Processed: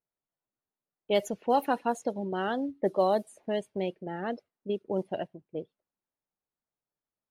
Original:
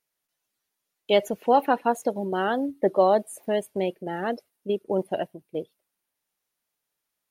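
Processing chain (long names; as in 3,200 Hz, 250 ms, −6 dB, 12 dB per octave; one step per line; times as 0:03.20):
low-pass that shuts in the quiet parts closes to 1,100 Hz, open at −15.5 dBFS
bass and treble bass +4 dB, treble −7 dB, from 0:01.14 treble +10 dB
level −6 dB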